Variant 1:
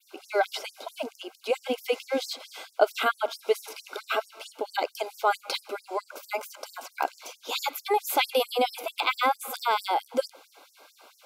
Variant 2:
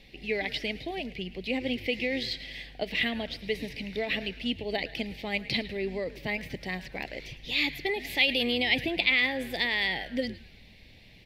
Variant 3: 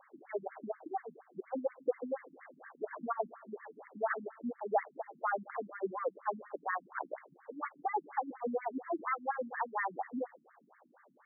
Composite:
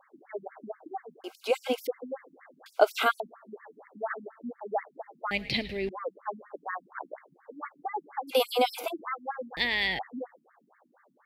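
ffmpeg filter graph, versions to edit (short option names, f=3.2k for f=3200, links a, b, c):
-filter_complex "[0:a]asplit=3[a][b][c];[1:a]asplit=2[d][e];[2:a]asplit=6[f][g][h][i][j][k];[f]atrim=end=1.242[l];[a]atrim=start=1.238:end=1.872[m];[g]atrim=start=1.868:end=2.662[n];[b]atrim=start=2.658:end=3.202[o];[h]atrim=start=3.198:end=5.312[p];[d]atrim=start=5.308:end=5.892[q];[i]atrim=start=5.888:end=8.33[r];[c]atrim=start=8.27:end=8.94[s];[j]atrim=start=8.88:end=9.572[t];[e]atrim=start=9.568:end=9.992[u];[k]atrim=start=9.988[v];[l][m]acrossfade=d=0.004:c1=hsin:c2=hsin[w];[w][n]acrossfade=d=0.004:c1=hsin:c2=hsin[x];[x][o]acrossfade=d=0.004:c1=hsin:c2=hsin[y];[y][p]acrossfade=d=0.004:c1=hsin:c2=hsin[z];[z][q]acrossfade=d=0.004:c1=hsin:c2=hsin[aa];[aa][r]acrossfade=d=0.004:c1=hsin:c2=hsin[ab];[ab][s]acrossfade=d=0.06:c1=tri:c2=tri[ac];[ac][t]acrossfade=d=0.06:c1=tri:c2=tri[ad];[ad][u]acrossfade=d=0.004:c1=hsin:c2=hsin[ae];[ae][v]acrossfade=d=0.004:c1=hsin:c2=hsin"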